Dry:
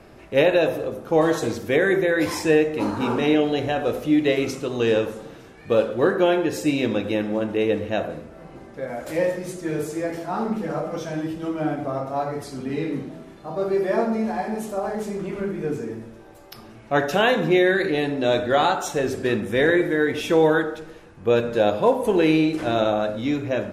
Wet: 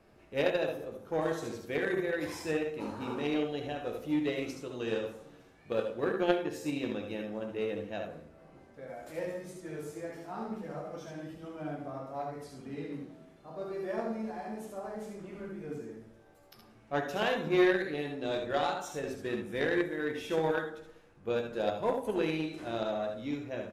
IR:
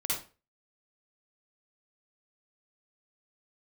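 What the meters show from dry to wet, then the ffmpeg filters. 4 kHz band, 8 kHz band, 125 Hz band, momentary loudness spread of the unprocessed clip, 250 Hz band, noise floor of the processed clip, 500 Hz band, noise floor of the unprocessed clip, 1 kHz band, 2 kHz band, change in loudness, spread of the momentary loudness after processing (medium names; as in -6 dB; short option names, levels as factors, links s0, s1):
-11.5 dB, -13.0 dB, -13.0 dB, 11 LU, -12.5 dB, -59 dBFS, -12.0 dB, -45 dBFS, -12.0 dB, -11.5 dB, -12.0 dB, 13 LU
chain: -af "aecho=1:1:14|69|80:0.335|0.447|0.398,aeval=exprs='0.75*(cos(1*acos(clip(val(0)/0.75,-1,1)))-cos(1*PI/2))+0.15*(cos(3*acos(clip(val(0)/0.75,-1,1)))-cos(3*PI/2))':c=same,volume=0.422"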